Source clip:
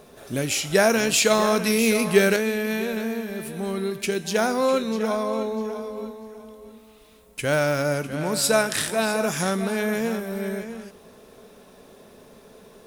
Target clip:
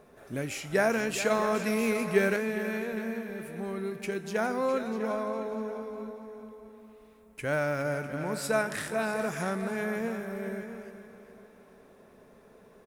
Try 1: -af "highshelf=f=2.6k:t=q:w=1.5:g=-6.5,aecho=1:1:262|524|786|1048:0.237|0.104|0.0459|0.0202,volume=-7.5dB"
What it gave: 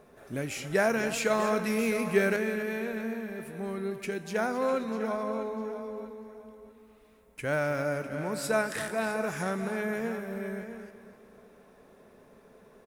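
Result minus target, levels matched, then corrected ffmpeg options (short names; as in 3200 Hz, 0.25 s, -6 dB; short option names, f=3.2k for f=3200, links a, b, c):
echo 0.15 s early
-af "highshelf=f=2.6k:t=q:w=1.5:g=-6.5,aecho=1:1:412|824|1236|1648:0.237|0.104|0.0459|0.0202,volume=-7.5dB"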